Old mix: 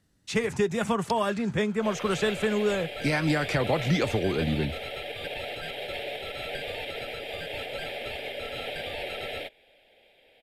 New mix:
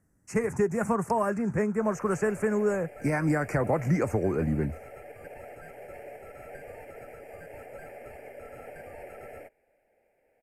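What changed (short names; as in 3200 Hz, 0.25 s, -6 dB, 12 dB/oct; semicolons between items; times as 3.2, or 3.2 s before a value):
background -7.0 dB; master: add Butterworth band-stop 3600 Hz, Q 0.7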